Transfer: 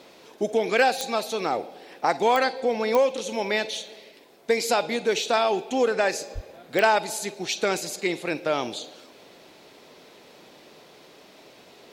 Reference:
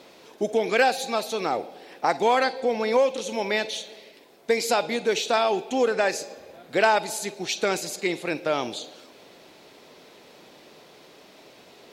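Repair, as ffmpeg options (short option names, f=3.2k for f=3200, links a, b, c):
-filter_complex "[0:a]adeclick=t=4,asplit=3[a][b][c];[a]afade=t=out:st=6.34:d=0.02[d];[b]highpass=f=140:w=0.5412,highpass=f=140:w=1.3066,afade=t=in:st=6.34:d=0.02,afade=t=out:st=6.46:d=0.02[e];[c]afade=t=in:st=6.46:d=0.02[f];[d][e][f]amix=inputs=3:normalize=0"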